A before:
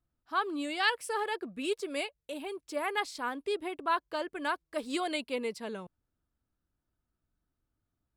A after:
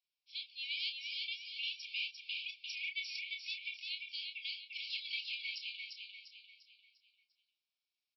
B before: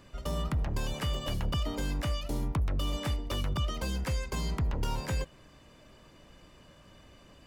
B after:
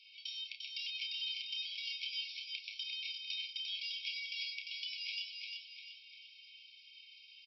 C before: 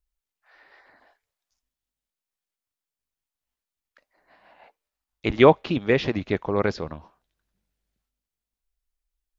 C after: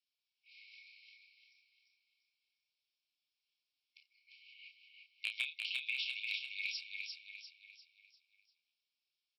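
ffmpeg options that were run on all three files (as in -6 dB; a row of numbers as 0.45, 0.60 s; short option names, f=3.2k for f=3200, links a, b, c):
-filter_complex "[0:a]afftfilt=real='re*between(b*sr/4096,2000,5500)':imag='im*between(b*sr/4096,2000,5500)':win_size=4096:overlap=0.75,acompressor=threshold=-45dB:ratio=3,afreqshift=170,asoftclip=type=hard:threshold=-29dB,asplit=2[a][b];[b]adelay=30,volume=-7dB[c];[a][c]amix=inputs=2:normalize=0,aecho=1:1:348|696|1044|1392|1740:0.631|0.271|0.117|0.0502|0.0216,volume=5dB"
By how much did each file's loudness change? -6.5, -6.0, -17.0 LU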